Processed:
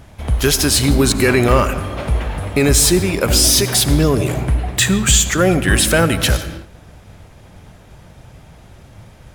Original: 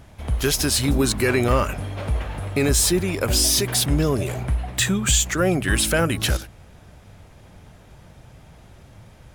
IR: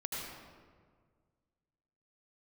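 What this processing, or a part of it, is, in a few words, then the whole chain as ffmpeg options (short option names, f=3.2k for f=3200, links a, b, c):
keyed gated reverb: -filter_complex "[0:a]asplit=3[a][b][c];[1:a]atrim=start_sample=2205[d];[b][d]afir=irnorm=-1:irlink=0[e];[c]apad=whole_len=412048[f];[e][f]sidechaingate=range=-33dB:threshold=-43dB:ratio=16:detection=peak,volume=-11dB[g];[a][g]amix=inputs=2:normalize=0,volume=4.5dB"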